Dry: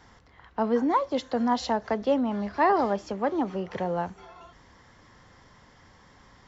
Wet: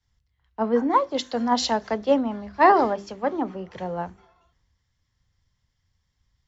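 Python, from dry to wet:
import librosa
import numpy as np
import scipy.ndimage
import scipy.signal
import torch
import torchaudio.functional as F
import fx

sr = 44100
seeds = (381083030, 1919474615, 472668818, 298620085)

y = fx.hum_notches(x, sr, base_hz=50, count=8)
y = fx.band_widen(y, sr, depth_pct=100)
y = y * librosa.db_to_amplitude(1.5)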